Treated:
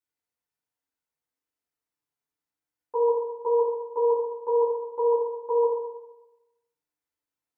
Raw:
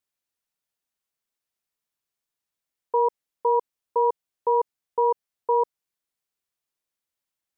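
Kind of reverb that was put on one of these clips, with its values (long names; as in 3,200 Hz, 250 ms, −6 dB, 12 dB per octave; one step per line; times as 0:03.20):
feedback delay network reverb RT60 1 s, low-frequency decay 0.95×, high-frequency decay 0.25×, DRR −8 dB
level −10.5 dB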